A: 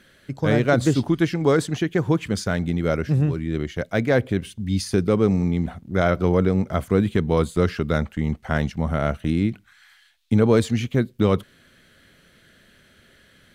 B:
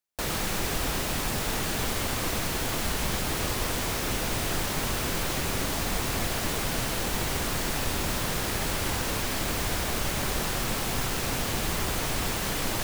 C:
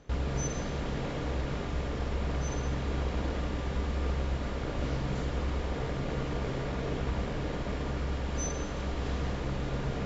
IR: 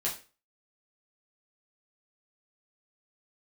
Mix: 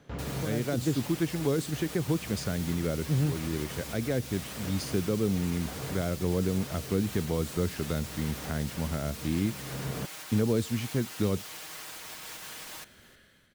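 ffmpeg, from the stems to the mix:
-filter_complex "[0:a]dynaudnorm=f=150:g=7:m=3.98,volume=0.2,asplit=2[s0][s1];[1:a]highpass=f=1200:p=1,alimiter=level_in=1.88:limit=0.0631:level=0:latency=1:release=438,volume=0.531,aecho=1:1:6.4:0.65,volume=0.596,asplit=2[s2][s3];[s3]volume=0.106[s4];[2:a]highpass=99,acrossover=split=3000[s5][s6];[s6]acompressor=threshold=0.001:ratio=4:attack=1:release=60[s7];[s5][s7]amix=inputs=2:normalize=0,equalizer=f=140:t=o:w=0.77:g=4.5,volume=0.794[s8];[s1]apad=whole_len=443395[s9];[s8][s9]sidechaincompress=threshold=0.02:ratio=8:attack=16:release=446[s10];[s4]aecho=0:1:312|624|936|1248:1|0.26|0.0676|0.0176[s11];[s0][s2][s10][s11]amix=inputs=4:normalize=0,acrossover=split=480|3000[s12][s13][s14];[s13]acompressor=threshold=0.0126:ratio=6[s15];[s12][s15][s14]amix=inputs=3:normalize=0"

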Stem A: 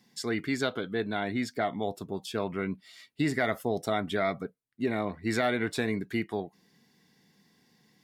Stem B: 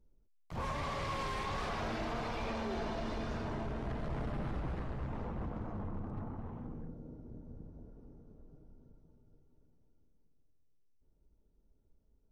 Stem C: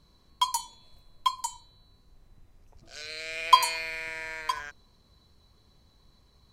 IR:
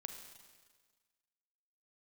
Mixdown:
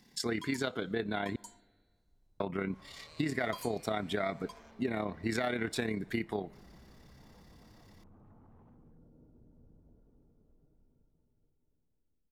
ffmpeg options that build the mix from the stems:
-filter_complex "[0:a]tremolo=f=34:d=0.519,volume=1.41,asplit=3[s0][s1][s2];[s0]atrim=end=1.36,asetpts=PTS-STARTPTS,afade=t=out:st=1.356:d=0.004:c=hsin[s3];[s1]atrim=start=1.36:end=2.4,asetpts=PTS-STARTPTS,volume=0[s4];[s2]atrim=start=2.4,asetpts=PTS-STARTPTS,afade=t=in:d=0.004:c=hsin[s5];[s3][s4][s5]concat=n=3:v=0:a=1,asplit=2[s6][s7];[s7]volume=0.141[s8];[1:a]alimiter=level_in=7.94:limit=0.0631:level=0:latency=1:release=27,volume=0.126,adelay=2100,volume=0.299[s9];[2:a]equalizer=f=1600:t=o:w=1.5:g=-13,volume=0.2[s10];[3:a]atrim=start_sample=2205[s11];[s8][s11]afir=irnorm=-1:irlink=0[s12];[s6][s9][s10][s12]amix=inputs=4:normalize=0,acompressor=threshold=0.0282:ratio=3"

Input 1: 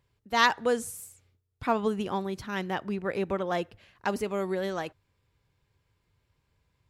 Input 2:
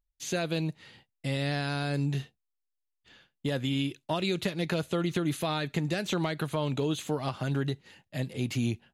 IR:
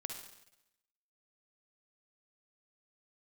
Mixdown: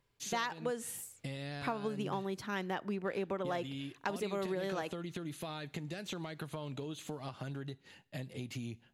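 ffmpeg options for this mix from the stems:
-filter_complex "[0:a]highpass=150,volume=0.794[s0];[1:a]acompressor=threshold=0.0158:ratio=6,volume=0.668,asplit=2[s1][s2];[s2]volume=0.126[s3];[2:a]atrim=start_sample=2205[s4];[s3][s4]afir=irnorm=-1:irlink=0[s5];[s0][s1][s5]amix=inputs=3:normalize=0,acompressor=threshold=0.0251:ratio=10"

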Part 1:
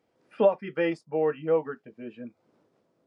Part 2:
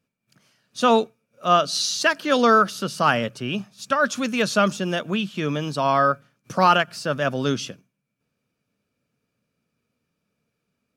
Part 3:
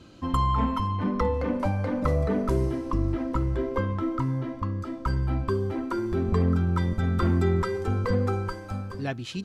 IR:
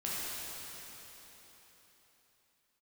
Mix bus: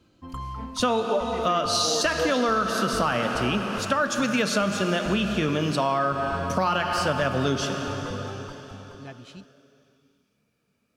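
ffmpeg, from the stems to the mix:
-filter_complex "[0:a]adelay=700,volume=0.473[s0];[1:a]volume=0.631,asplit=2[s1][s2];[s2]volume=0.596[s3];[2:a]volume=0.282[s4];[s0][s1]amix=inputs=2:normalize=0,acontrast=39,alimiter=limit=0.316:level=0:latency=1,volume=1[s5];[3:a]atrim=start_sample=2205[s6];[s3][s6]afir=irnorm=-1:irlink=0[s7];[s4][s5][s7]amix=inputs=3:normalize=0,acompressor=threshold=0.1:ratio=6"

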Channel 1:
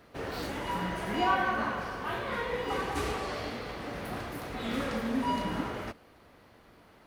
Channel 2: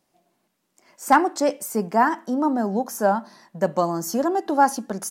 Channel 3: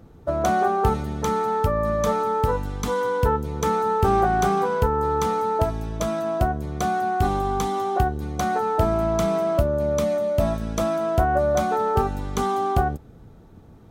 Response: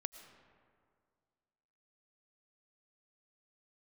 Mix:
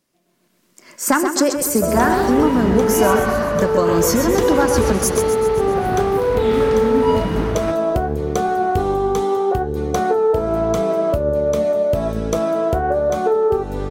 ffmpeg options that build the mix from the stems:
-filter_complex "[0:a]lowshelf=f=180:g=11,adelay=1800,volume=0.596[s0];[1:a]equalizer=f=780:w=3.1:g=-12.5,acompressor=threshold=0.0501:ratio=6,volume=1.19,asplit=2[s1][s2];[s2]volume=0.422[s3];[2:a]equalizer=f=440:t=o:w=0.51:g=14,acompressor=threshold=0.0891:ratio=6,flanger=delay=6.8:depth=9.5:regen=81:speed=0.86:shape=triangular,adelay=1550,volume=0.841[s4];[s3]aecho=0:1:130|260|390|520|650|780|910|1040|1170:1|0.57|0.325|0.185|0.106|0.0602|0.0343|0.0195|0.0111[s5];[s0][s1][s4][s5]amix=inputs=4:normalize=0,dynaudnorm=f=200:g=5:m=3.98"

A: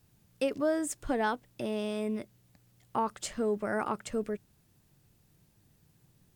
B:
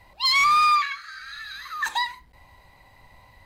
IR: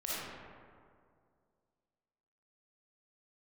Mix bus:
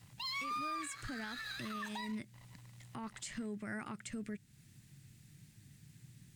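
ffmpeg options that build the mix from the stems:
-filter_complex "[0:a]acompressor=threshold=0.00501:ratio=2,equalizer=f=125:t=o:w=1:g=12,equalizer=f=250:t=o:w=1:g=6,equalizer=f=500:t=o:w=1:g=-7,equalizer=f=1000:t=o:w=1:g=-4,equalizer=f=2000:t=o:w=1:g=11,equalizer=f=4000:t=o:w=1:g=5,equalizer=f=8000:t=o:w=1:g=10,volume=0.75[s0];[1:a]acompressor=threshold=0.0178:ratio=2.5,aeval=exprs='sgn(val(0))*max(abs(val(0))-0.00335,0)':c=same,volume=0.841[s1];[s0][s1]amix=inputs=2:normalize=0,alimiter=level_in=2.99:limit=0.0631:level=0:latency=1:release=86,volume=0.335"

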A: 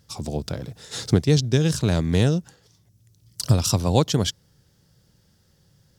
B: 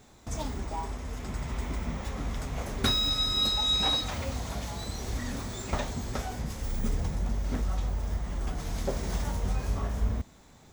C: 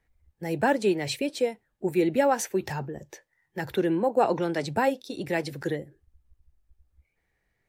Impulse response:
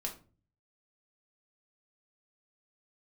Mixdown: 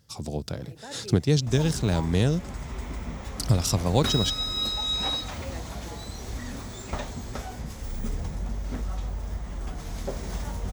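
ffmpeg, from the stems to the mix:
-filter_complex "[0:a]volume=0.668,asplit=2[s0][s1];[1:a]adelay=1200,volume=0.841[s2];[2:a]adelay=200,volume=0.15[s3];[s1]apad=whole_len=347775[s4];[s3][s4]sidechaincompress=threshold=0.0282:ratio=8:attack=16:release=1330[s5];[s0][s2][s5]amix=inputs=3:normalize=0"

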